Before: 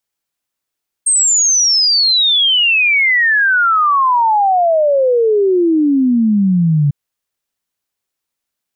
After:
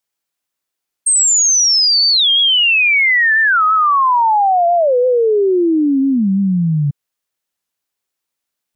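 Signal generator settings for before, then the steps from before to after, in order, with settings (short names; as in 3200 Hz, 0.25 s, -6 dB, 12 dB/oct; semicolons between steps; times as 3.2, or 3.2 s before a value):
log sweep 8600 Hz -> 140 Hz 5.85 s -9 dBFS
low shelf 150 Hz -5.5 dB; record warp 45 rpm, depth 160 cents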